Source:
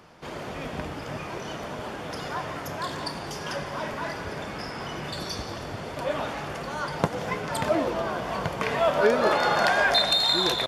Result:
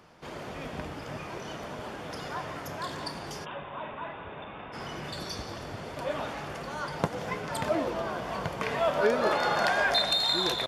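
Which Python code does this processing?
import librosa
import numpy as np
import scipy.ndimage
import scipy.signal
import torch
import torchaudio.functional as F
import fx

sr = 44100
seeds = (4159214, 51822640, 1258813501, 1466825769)

y = fx.cheby_ripple(x, sr, hz=3700.0, ripple_db=6, at=(3.44, 4.72), fade=0.02)
y = y * 10.0 ** (-4.0 / 20.0)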